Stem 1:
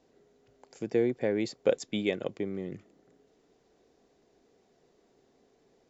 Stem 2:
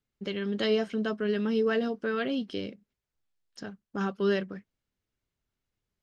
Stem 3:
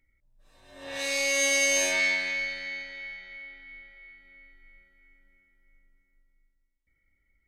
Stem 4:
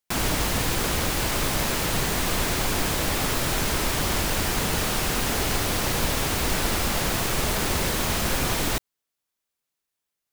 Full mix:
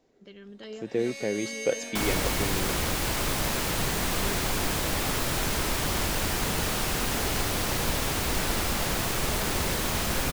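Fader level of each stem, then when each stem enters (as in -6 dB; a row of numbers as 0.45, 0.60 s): -1.0, -15.0, -13.0, -3.0 dB; 0.00, 0.00, 0.00, 1.85 s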